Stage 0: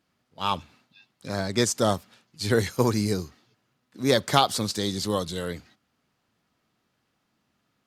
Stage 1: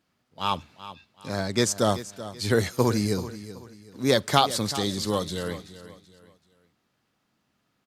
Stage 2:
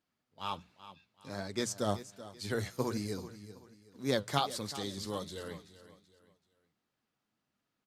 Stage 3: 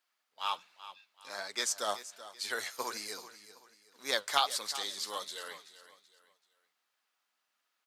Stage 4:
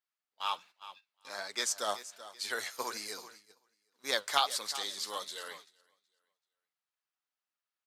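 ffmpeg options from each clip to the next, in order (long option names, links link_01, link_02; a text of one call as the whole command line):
ffmpeg -i in.wav -af "aecho=1:1:381|762|1143:0.188|0.064|0.0218" out.wav
ffmpeg -i in.wav -af "bandreject=frequency=60:width_type=h:width=6,bandreject=frequency=120:width_type=h:width=6,bandreject=frequency=180:width_type=h:width=6,flanger=delay=1.8:depth=8.4:regen=66:speed=1.3:shape=triangular,volume=-7dB" out.wav
ffmpeg -i in.wav -af "highpass=940,volume=6dB" out.wav
ffmpeg -i in.wav -af "agate=range=-14dB:threshold=-53dB:ratio=16:detection=peak" out.wav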